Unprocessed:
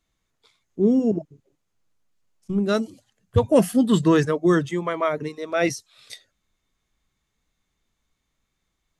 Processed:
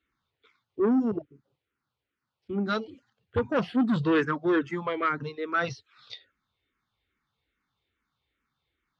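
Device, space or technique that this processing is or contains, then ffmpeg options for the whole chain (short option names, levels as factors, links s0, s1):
barber-pole phaser into a guitar amplifier: -filter_complex "[0:a]asplit=2[s0][s1];[s1]afreqshift=-2.4[s2];[s0][s2]amix=inputs=2:normalize=1,asoftclip=type=tanh:threshold=0.112,highpass=77,equalizer=f=180:t=q:w=4:g=-8,equalizer=f=640:t=q:w=4:g=-8,equalizer=f=1400:t=q:w=4:g=6,lowpass=f=4200:w=0.5412,lowpass=f=4200:w=1.3066,volume=1.19"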